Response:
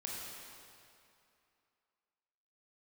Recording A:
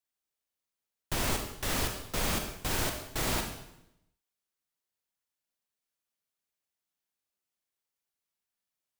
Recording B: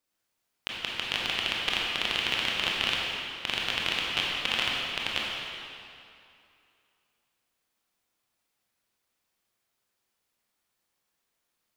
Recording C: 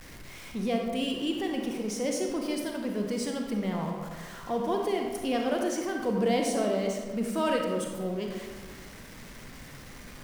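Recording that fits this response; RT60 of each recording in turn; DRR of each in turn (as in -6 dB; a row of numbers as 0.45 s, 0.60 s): B; 0.80 s, 2.6 s, 1.5 s; 4.5 dB, -4.0 dB, 1.0 dB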